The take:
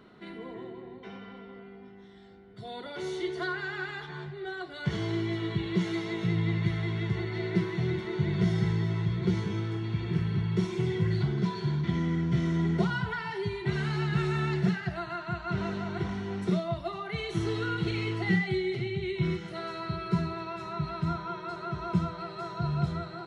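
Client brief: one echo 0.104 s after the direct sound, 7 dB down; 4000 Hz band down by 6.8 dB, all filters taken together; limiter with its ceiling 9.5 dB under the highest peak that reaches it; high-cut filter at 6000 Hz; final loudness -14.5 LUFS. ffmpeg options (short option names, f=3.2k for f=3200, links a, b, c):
-af "lowpass=6k,equalizer=f=4k:t=o:g=-8,alimiter=limit=-22.5dB:level=0:latency=1,aecho=1:1:104:0.447,volume=18dB"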